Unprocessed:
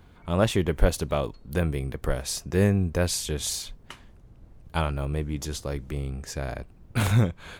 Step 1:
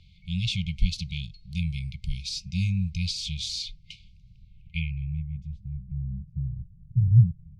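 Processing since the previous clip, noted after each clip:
de-essing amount 55%
brick-wall band-stop 200–2,100 Hz
low-pass filter sweep 4,500 Hz → 140 Hz, 0:04.39–0:06.40
level −1.5 dB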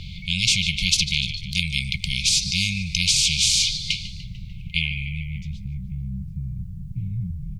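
echo with shifted repeats 148 ms, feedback 53%, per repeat −37 Hz, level −18.5 dB
every bin compressed towards the loudest bin 4 to 1
level +4 dB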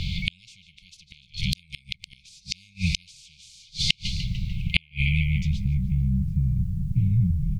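gate with flip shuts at −12 dBFS, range −38 dB
level +7 dB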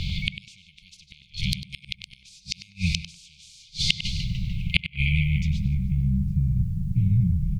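tape delay 97 ms, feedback 27%, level −7 dB, low-pass 2,300 Hz

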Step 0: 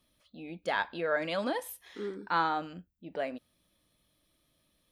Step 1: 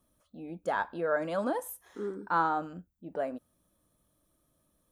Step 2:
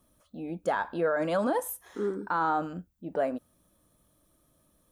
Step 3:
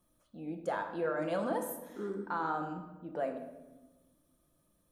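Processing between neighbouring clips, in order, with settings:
flat-topped bell 3,100 Hz −12.5 dB; level +1.5 dB
brickwall limiter −24 dBFS, peak gain reduction 8.5 dB; level +5.5 dB
convolution reverb RT60 1.1 s, pre-delay 6 ms, DRR 4.5 dB; level −7.5 dB

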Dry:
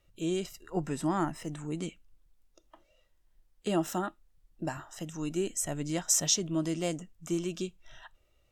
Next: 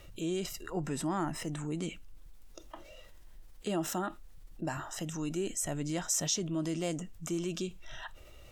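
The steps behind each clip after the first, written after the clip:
envelope flattener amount 50%
level −6 dB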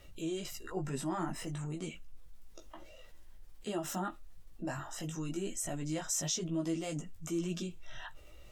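multi-voice chorus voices 6, 0.26 Hz, delay 17 ms, depth 4.9 ms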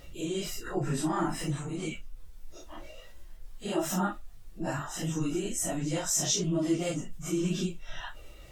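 random phases in long frames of 100 ms
level +6.5 dB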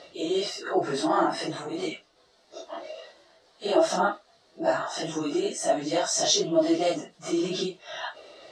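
loudspeaker in its box 380–6,900 Hz, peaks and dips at 400 Hz +5 dB, 660 Hz +9 dB, 2,500 Hz −6 dB, 4,200 Hz +7 dB, 6,900 Hz −7 dB
level +6.5 dB

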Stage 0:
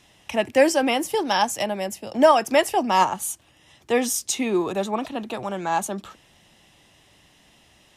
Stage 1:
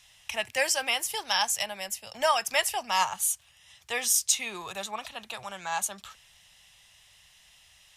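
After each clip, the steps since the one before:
guitar amp tone stack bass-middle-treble 10-0-10
level +2.5 dB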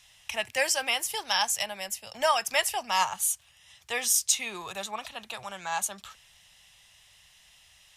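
no processing that can be heard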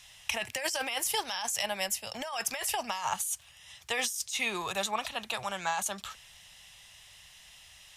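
compressor whose output falls as the input rises −32 dBFS, ratio −1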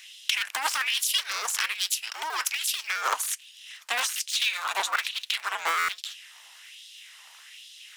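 sub-harmonics by changed cycles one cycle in 2, inverted
auto-filter high-pass sine 1.2 Hz 900–3,600 Hz
buffer that repeats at 0:05.78, samples 512, times 8
level +3 dB

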